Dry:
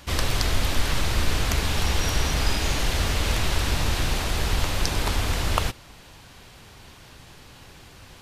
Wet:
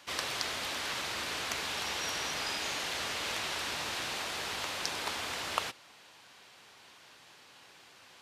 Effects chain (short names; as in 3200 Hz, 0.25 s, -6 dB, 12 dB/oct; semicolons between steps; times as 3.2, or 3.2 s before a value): weighting filter A; gain -7 dB